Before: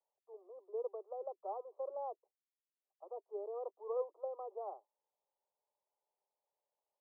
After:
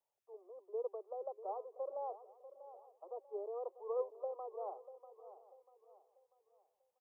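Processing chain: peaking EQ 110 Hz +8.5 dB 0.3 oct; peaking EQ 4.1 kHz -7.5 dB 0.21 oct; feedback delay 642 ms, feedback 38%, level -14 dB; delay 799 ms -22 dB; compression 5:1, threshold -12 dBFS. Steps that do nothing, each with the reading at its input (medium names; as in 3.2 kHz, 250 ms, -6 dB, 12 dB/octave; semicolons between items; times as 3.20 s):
peaking EQ 110 Hz: input has nothing below 360 Hz; peaking EQ 4.1 kHz: input has nothing above 1.3 kHz; compression, threshold -12 dBFS: peak at its input -27.5 dBFS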